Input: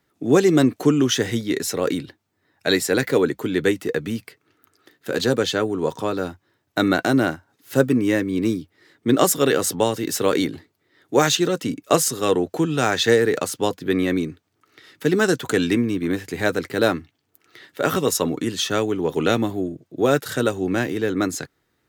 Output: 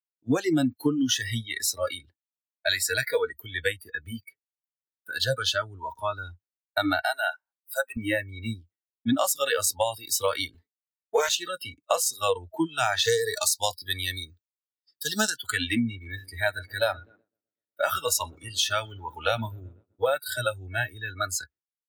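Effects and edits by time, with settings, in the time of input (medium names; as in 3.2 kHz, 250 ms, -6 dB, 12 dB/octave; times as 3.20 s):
7.01–7.97 s: high-pass 630 Hz 24 dB/octave
10.54–11.29 s: comb 4.5 ms, depth 76%
13.05–15.30 s: resonant high shelf 3.3 kHz +8 dB, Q 1.5
15.95–20.00 s: filtered feedback delay 124 ms, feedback 81%, low-pass 3 kHz, level -15.5 dB
whole clip: spectral noise reduction 29 dB; expander -49 dBFS; compression 6:1, threshold -22 dBFS; trim +1.5 dB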